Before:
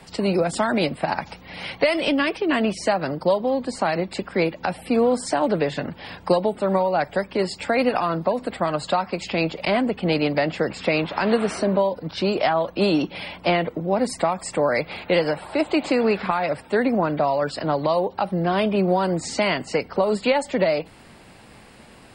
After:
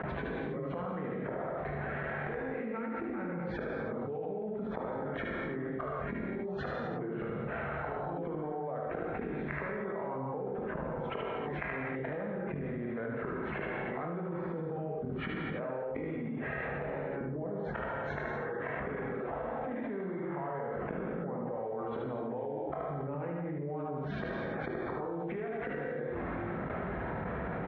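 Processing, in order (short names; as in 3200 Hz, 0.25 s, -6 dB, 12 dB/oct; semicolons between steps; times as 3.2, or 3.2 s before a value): HPF 45 Hz 24 dB/oct; de-hum 437.1 Hz, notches 5; gate with hold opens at -36 dBFS; LPF 2200 Hz 24 dB/oct; low shelf 73 Hz -5.5 dB; in parallel at -3 dB: limiter -19.5 dBFS, peak gain reduction 12 dB; on the sum: varispeed -20%; flipped gate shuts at -21 dBFS, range -28 dB; on a send: echo 75 ms -5 dB; on the sum: non-linear reverb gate 0.27 s flat, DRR -0.5 dB; fast leveller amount 100%; gain -8.5 dB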